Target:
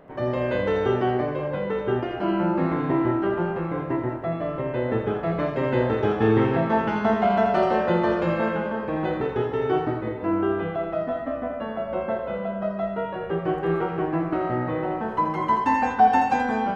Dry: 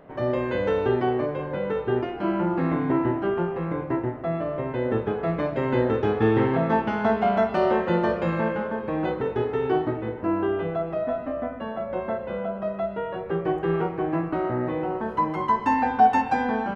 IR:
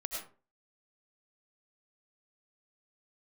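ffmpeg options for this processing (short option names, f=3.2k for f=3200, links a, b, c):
-filter_complex "[0:a]asplit=2[a][b];[1:a]atrim=start_sample=2205,highshelf=f=4.1k:g=9,adelay=82[c];[b][c]afir=irnorm=-1:irlink=0,volume=-7dB[d];[a][d]amix=inputs=2:normalize=0"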